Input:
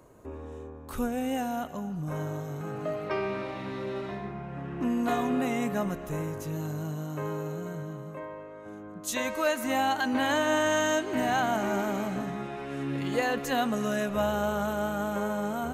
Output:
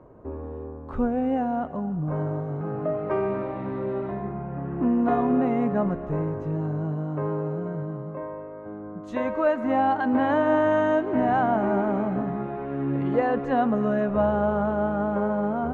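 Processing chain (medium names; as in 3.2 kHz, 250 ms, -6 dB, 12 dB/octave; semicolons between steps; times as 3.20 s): low-pass 1.1 kHz 12 dB/octave; trim +6 dB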